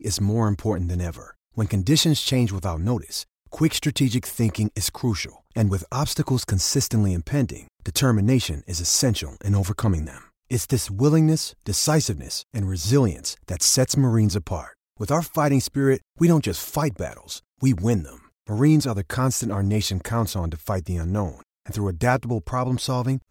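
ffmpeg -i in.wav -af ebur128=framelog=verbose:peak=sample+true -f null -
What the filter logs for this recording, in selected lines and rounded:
Integrated loudness:
  I:         -22.8 LUFS
  Threshold: -33.1 LUFS
Loudness range:
  LRA:         2.9 LU
  Threshold: -43.0 LUFS
  LRA low:   -24.5 LUFS
  LRA high:  -21.6 LUFS
Sample peak:
  Peak:       -6.3 dBFS
True peak:
  Peak:       -6.3 dBFS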